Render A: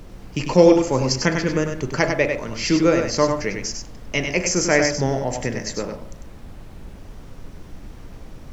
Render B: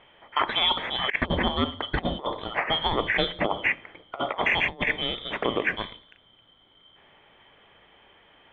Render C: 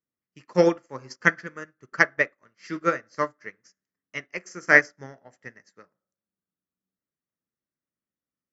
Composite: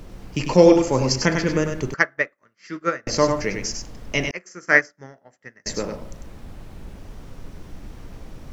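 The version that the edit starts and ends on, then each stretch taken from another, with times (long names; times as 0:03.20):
A
0:01.94–0:03.07: punch in from C
0:04.31–0:05.66: punch in from C
not used: B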